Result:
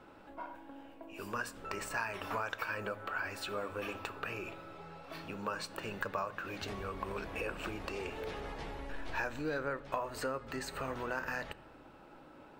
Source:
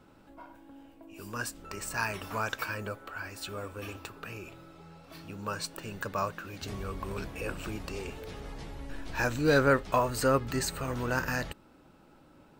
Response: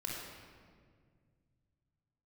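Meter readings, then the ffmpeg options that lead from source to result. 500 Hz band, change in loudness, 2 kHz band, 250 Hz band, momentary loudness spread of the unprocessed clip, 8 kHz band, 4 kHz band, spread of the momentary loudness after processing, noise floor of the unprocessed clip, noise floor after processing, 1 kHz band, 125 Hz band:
−7.5 dB, −7.0 dB, −4.5 dB, −8.5 dB, 22 LU, −10.5 dB, −5.5 dB, 13 LU, −59 dBFS, −56 dBFS, −5.0 dB, −11.5 dB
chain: -filter_complex "[0:a]acompressor=threshold=-37dB:ratio=12,bass=frequency=250:gain=-11,treble=frequency=4000:gain=-10,asplit=2[link_01][link_02];[1:a]atrim=start_sample=2205,asetrate=79380,aresample=44100,lowshelf=frequency=170:gain=11[link_03];[link_02][link_03]afir=irnorm=-1:irlink=0,volume=-12dB[link_04];[link_01][link_04]amix=inputs=2:normalize=0,volume=4.5dB"

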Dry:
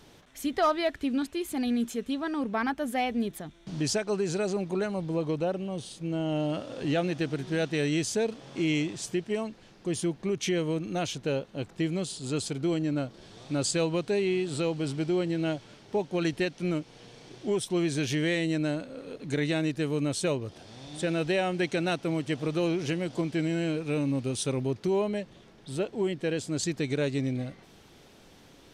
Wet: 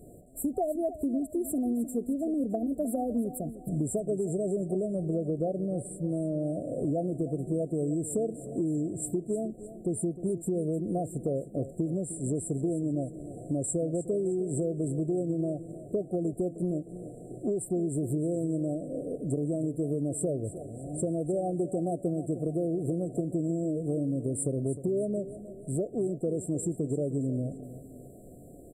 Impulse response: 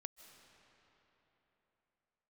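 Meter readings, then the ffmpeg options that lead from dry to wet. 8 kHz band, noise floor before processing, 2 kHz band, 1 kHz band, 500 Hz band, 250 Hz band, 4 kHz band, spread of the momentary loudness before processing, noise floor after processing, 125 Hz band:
−1.0 dB, −55 dBFS, below −40 dB, −6.5 dB, −1.0 dB, −0.5 dB, below −40 dB, 7 LU, −48 dBFS, 0.0 dB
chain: -filter_complex "[0:a]afftfilt=real='re*(1-between(b*sr/4096,750,7300))':imag='im*(1-between(b*sr/4096,750,7300))':win_size=4096:overlap=0.75,acompressor=threshold=-33dB:ratio=6,asplit=2[link_01][link_02];[link_02]aecho=0:1:308|616|924|1232:0.2|0.0878|0.0386|0.017[link_03];[link_01][link_03]amix=inputs=2:normalize=0,volume=6dB"

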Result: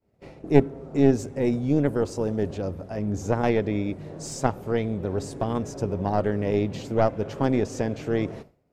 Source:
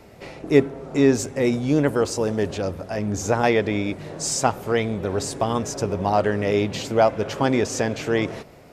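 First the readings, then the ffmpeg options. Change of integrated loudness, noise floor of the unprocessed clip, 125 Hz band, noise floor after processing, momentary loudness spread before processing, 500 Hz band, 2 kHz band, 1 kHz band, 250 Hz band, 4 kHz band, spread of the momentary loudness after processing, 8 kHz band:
−3.5 dB, −46 dBFS, 0.0 dB, −59 dBFS, 8 LU, −4.0 dB, −8.5 dB, −6.0 dB, −2.0 dB, −11.0 dB, 9 LU, −12.0 dB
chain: -af "aeval=exprs='0.794*(cos(1*acos(clip(val(0)/0.794,-1,1)))-cos(1*PI/2))+0.398*(cos(2*acos(clip(val(0)/0.794,-1,1)))-cos(2*PI/2))+0.0112*(cos(8*acos(clip(val(0)/0.794,-1,1)))-cos(8*PI/2))':channel_layout=same,agate=range=-33dB:threshold=-35dB:ratio=3:detection=peak,tiltshelf=frequency=720:gain=5.5,volume=-6.5dB"

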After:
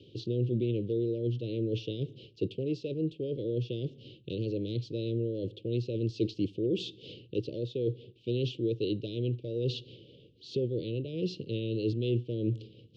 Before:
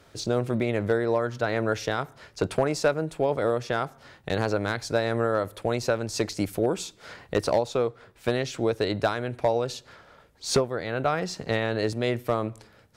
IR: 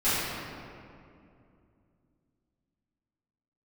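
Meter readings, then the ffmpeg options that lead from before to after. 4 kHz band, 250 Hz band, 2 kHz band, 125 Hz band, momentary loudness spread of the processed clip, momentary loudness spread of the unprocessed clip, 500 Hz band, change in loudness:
−7.0 dB, −2.5 dB, −21.5 dB, 0.0 dB, 7 LU, 7 LU, −8.0 dB, −6.0 dB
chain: -af "areverse,acompressor=threshold=-31dB:ratio=10,areverse,asuperstop=centerf=1200:order=12:qfactor=0.51,highpass=110,equalizer=frequency=120:width_type=q:width=4:gain=10,equalizer=frequency=340:width_type=q:width=4:gain=7,equalizer=frequency=800:width_type=q:width=4:gain=-9,equalizer=frequency=1400:width_type=q:width=4:gain=-9,equalizer=frequency=2900:width_type=q:width=4:gain=7,lowpass=frequency=3700:width=0.5412,lowpass=frequency=3700:width=1.3066,volume=3dB"

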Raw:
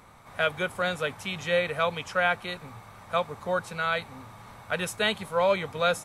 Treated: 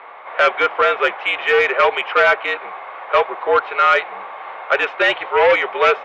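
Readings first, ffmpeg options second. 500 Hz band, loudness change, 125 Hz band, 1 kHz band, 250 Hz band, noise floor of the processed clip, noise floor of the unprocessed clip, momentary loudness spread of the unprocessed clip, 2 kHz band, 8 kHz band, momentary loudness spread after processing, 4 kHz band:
+10.5 dB, +11.5 dB, below −10 dB, +13.0 dB, +1.0 dB, −34 dBFS, −49 dBFS, 17 LU, +12.5 dB, can't be measured, 15 LU, +7.0 dB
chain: -af "aeval=exprs='0.282*sin(PI/2*2.51*val(0)/0.282)':channel_layout=same,highpass=frequency=560:width_type=q:width=0.5412,highpass=frequency=560:width_type=q:width=1.307,lowpass=frequency=3000:width_type=q:width=0.5176,lowpass=frequency=3000:width_type=q:width=0.7071,lowpass=frequency=3000:width_type=q:width=1.932,afreqshift=-67,acontrast=65,volume=-1dB"

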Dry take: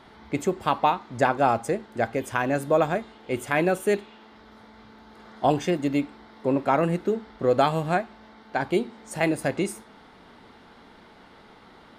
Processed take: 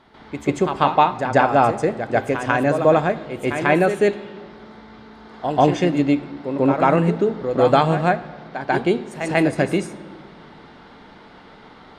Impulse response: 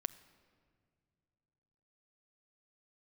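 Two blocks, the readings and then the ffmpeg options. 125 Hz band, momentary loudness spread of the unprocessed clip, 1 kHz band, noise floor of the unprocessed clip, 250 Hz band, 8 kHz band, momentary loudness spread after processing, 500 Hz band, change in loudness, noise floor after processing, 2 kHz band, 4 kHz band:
+7.5 dB, 9 LU, +6.0 dB, −51 dBFS, +6.5 dB, can't be measured, 11 LU, +6.0 dB, +6.0 dB, −45 dBFS, +6.0 dB, +5.0 dB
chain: -filter_complex "[0:a]highshelf=frequency=8300:gain=-8,asplit=2[link_01][link_02];[1:a]atrim=start_sample=2205,lowpass=7800,adelay=142[link_03];[link_02][link_03]afir=irnorm=-1:irlink=0,volume=9.5dB[link_04];[link_01][link_04]amix=inputs=2:normalize=0,volume=-3dB"

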